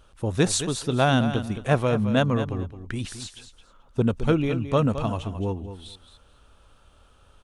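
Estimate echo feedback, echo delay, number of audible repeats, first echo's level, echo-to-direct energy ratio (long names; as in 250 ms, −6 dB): 17%, 217 ms, 2, −11.0 dB, −11.0 dB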